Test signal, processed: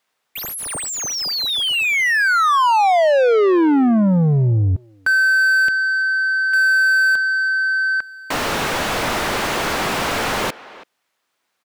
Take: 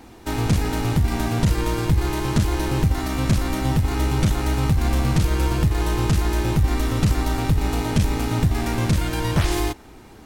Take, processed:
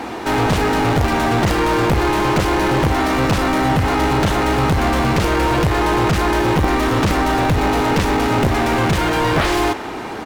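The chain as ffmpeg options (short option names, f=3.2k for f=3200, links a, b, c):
-filter_complex "[0:a]aeval=exprs='(mod(3.16*val(0)+1,2)-1)/3.16':c=same,asplit=2[a][b];[b]highpass=f=720:p=1,volume=30dB,asoftclip=type=tanh:threshold=-9.5dB[c];[a][c]amix=inputs=2:normalize=0,lowpass=f=1.5k:p=1,volume=-6dB,asplit=2[d][e];[e]adelay=330,highpass=300,lowpass=3.4k,asoftclip=type=hard:threshold=-19.5dB,volume=-17dB[f];[d][f]amix=inputs=2:normalize=0,volume=1.5dB"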